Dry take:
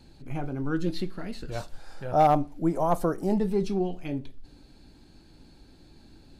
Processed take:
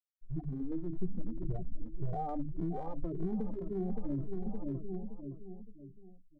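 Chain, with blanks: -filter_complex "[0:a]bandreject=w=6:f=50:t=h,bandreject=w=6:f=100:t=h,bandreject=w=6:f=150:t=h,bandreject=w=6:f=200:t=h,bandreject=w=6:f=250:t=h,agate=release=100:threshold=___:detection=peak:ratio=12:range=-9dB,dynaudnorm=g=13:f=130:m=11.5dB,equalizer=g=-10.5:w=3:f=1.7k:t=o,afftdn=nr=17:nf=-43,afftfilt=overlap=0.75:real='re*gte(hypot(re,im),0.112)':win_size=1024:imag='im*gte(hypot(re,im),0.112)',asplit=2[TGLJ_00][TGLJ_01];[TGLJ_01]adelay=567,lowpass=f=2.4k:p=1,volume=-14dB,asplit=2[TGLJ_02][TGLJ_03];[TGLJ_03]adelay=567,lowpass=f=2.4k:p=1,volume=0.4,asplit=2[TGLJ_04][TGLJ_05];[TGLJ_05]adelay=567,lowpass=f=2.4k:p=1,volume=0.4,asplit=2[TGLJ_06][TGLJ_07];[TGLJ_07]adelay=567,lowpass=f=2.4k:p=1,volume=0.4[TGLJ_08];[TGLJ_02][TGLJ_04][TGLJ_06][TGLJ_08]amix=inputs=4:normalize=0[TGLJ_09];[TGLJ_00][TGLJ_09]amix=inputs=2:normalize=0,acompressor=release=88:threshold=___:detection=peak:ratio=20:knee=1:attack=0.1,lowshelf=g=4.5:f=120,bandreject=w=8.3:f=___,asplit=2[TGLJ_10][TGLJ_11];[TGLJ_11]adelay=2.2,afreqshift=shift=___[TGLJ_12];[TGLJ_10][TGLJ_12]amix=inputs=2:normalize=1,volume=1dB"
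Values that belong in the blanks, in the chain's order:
-47dB, -30dB, 2.7k, 1.8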